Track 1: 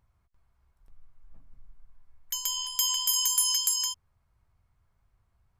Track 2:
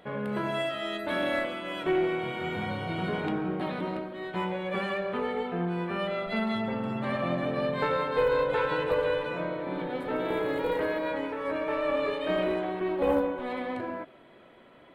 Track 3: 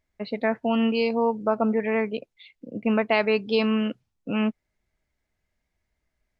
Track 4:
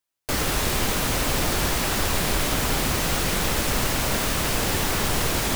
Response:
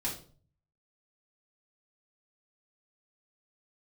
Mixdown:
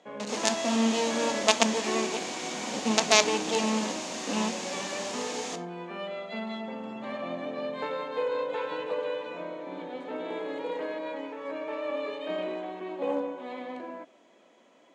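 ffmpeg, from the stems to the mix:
-filter_complex "[1:a]acrusher=bits=10:mix=0:aa=0.000001,volume=-3.5dB[link_01];[2:a]acrusher=bits=3:dc=4:mix=0:aa=0.000001,volume=1.5dB,asplit=2[link_02][link_03];[link_03]volume=-13.5dB[link_04];[3:a]volume=-12dB,asplit=2[link_05][link_06];[link_06]volume=-10.5dB[link_07];[4:a]atrim=start_sample=2205[link_08];[link_04][link_07]amix=inputs=2:normalize=0[link_09];[link_09][link_08]afir=irnorm=-1:irlink=0[link_10];[link_01][link_02][link_05][link_10]amix=inputs=4:normalize=0,highpass=frequency=220:width=0.5412,highpass=frequency=220:width=1.3066,equalizer=frequency=380:width_type=q:width=4:gain=-5,equalizer=frequency=1400:width_type=q:width=4:gain=-7,equalizer=frequency=1900:width_type=q:width=4:gain=-3,equalizer=frequency=6700:width_type=q:width=4:gain=7,lowpass=frequency=7400:width=0.5412,lowpass=frequency=7400:width=1.3066"

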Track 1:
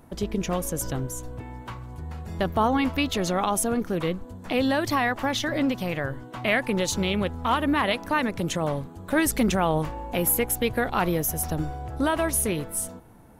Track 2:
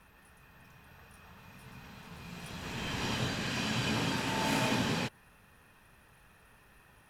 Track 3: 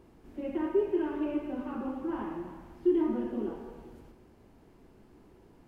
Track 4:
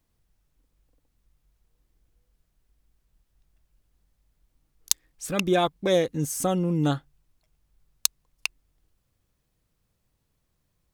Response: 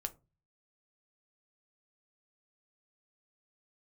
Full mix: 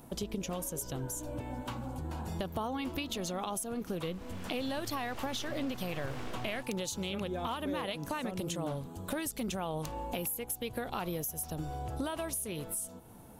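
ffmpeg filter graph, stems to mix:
-filter_complex "[0:a]lowshelf=frequency=84:gain=-6.5,aexciter=amount=3.6:drive=5.4:freq=2700,volume=0.5dB[link_01];[1:a]aeval=exprs='abs(val(0))':channel_layout=same,adelay=1550,volume=-4.5dB[link_02];[2:a]aecho=1:1:1.3:0.65,volume=-5dB[link_03];[3:a]adelay=1800,volume=-10.5dB[link_04];[link_01][link_03]amix=inputs=2:normalize=0,equalizer=frequency=310:width_type=o:width=0.4:gain=-2.5,acompressor=threshold=-28dB:ratio=2,volume=0dB[link_05];[link_02][link_04][link_05]amix=inputs=3:normalize=0,highshelf=frequency=2100:gain=-10.5,acompressor=threshold=-35dB:ratio=2.5"

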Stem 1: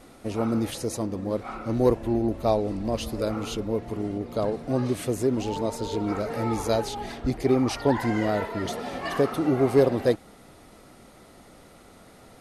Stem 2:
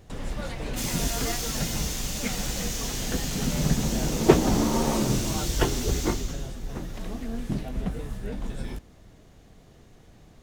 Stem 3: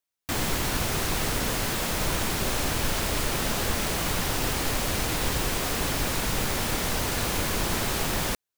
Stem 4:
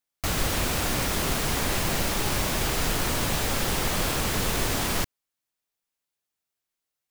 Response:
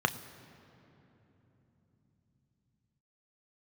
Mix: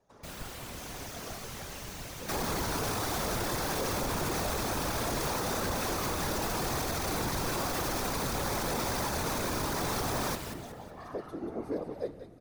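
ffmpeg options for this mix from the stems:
-filter_complex "[0:a]adelay=1950,volume=-13dB,asplit=3[link_01][link_02][link_03];[link_02]volume=-12dB[link_04];[link_03]volume=-9dB[link_05];[1:a]lowshelf=frequency=270:gain=-11.5,volume=-12.5dB,asplit=2[link_06][link_07];[link_07]volume=-7.5dB[link_08];[2:a]adelay=2000,volume=2.5dB,asplit=3[link_09][link_10][link_11];[link_10]volume=-13dB[link_12];[link_11]volume=-11dB[link_13];[3:a]volume=-10.5dB[link_14];[4:a]atrim=start_sample=2205[link_15];[link_04][link_08][link_12]amix=inputs=3:normalize=0[link_16];[link_16][link_15]afir=irnorm=-1:irlink=0[link_17];[link_05][link_13]amix=inputs=2:normalize=0,aecho=0:1:185|370|555|740|925:1|0.36|0.13|0.0467|0.0168[link_18];[link_01][link_06][link_09][link_14][link_17][link_18]amix=inputs=6:normalize=0,afftfilt=real='hypot(re,im)*cos(2*PI*random(0))':imag='hypot(re,im)*sin(2*PI*random(1))':win_size=512:overlap=0.75,alimiter=limit=-23dB:level=0:latency=1:release=19"

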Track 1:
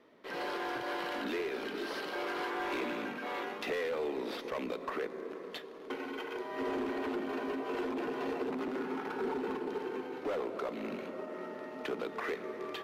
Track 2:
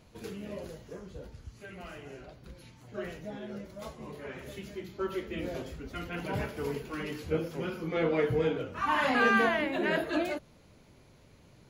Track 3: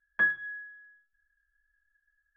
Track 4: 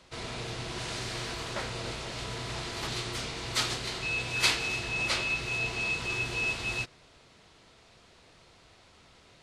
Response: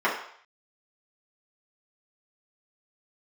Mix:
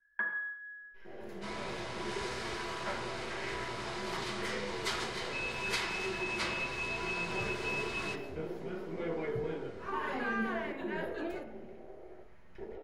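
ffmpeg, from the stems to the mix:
-filter_complex "[0:a]aeval=exprs='max(val(0),0)':channel_layout=same,equalizer=frequency=125:width_type=o:width=1:gain=-3,equalizer=frequency=250:width_type=o:width=1:gain=-9,equalizer=frequency=500:width_type=o:width=1:gain=-4,equalizer=frequency=1000:width_type=o:width=1:gain=-11,afwtdn=0.00631,adelay=700,volume=1.5dB,asplit=2[link_01][link_02];[link_02]volume=-11dB[link_03];[1:a]lowshelf=frequency=380:gain=7.5,adelay=1050,volume=-14.5dB,asplit=2[link_04][link_05];[link_05]volume=-15.5dB[link_06];[2:a]acompressor=threshold=-33dB:ratio=6,volume=-5.5dB,asplit=2[link_07][link_08];[link_08]volume=-7dB[link_09];[3:a]adelay=1300,volume=-8.5dB,asplit=2[link_10][link_11];[link_11]volume=-10.5dB[link_12];[link_01][link_07]amix=inputs=2:normalize=0,lowpass=frequency=1200:poles=1,acompressor=threshold=-50dB:ratio=1.5,volume=0dB[link_13];[4:a]atrim=start_sample=2205[link_14];[link_03][link_06][link_09][link_12]amix=inputs=4:normalize=0[link_15];[link_15][link_14]afir=irnorm=-1:irlink=0[link_16];[link_04][link_10][link_13][link_16]amix=inputs=4:normalize=0,acrossover=split=180[link_17][link_18];[link_18]acompressor=threshold=-30dB:ratio=6[link_19];[link_17][link_19]amix=inputs=2:normalize=0"

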